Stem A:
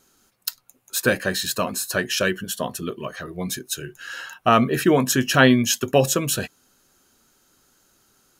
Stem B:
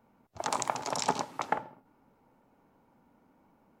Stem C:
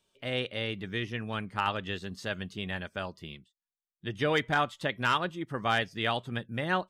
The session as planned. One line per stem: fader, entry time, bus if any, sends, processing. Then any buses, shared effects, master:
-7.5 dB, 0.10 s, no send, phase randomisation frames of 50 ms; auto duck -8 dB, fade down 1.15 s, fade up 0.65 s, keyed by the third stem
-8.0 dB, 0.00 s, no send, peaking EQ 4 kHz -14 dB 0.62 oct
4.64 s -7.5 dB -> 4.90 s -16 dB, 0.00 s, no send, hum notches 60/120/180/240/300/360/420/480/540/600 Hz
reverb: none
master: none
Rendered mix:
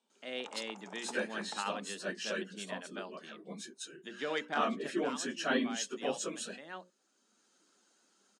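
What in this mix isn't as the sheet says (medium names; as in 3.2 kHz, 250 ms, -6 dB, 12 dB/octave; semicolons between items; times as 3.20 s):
stem B -8.0 dB -> -17.0 dB; master: extra Chebyshev band-pass 200–8800 Hz, order 4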